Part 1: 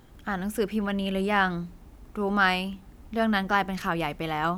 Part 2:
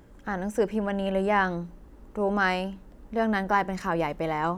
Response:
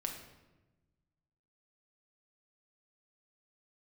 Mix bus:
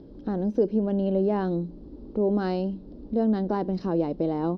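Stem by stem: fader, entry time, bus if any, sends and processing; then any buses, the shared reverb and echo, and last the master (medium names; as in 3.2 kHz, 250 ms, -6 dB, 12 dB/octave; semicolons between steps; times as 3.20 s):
-9.0 dB, 0.00 s, no send, local Wiener filter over 41 samples
+1.5 dB, 0.5 ms, no send, graphic EQ 500/4000/8000 Hz +3/+10/-7 dB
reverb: none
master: FFT filter 110 Hz 0 dB, 300 Hz +10 dB, 2 kHz -18 dB, 5.1 kHz -4 dB, 7.9 kHz -29 dB; compression 1.5:1, threshold -32 dBFS, peak gain reduction 8 dB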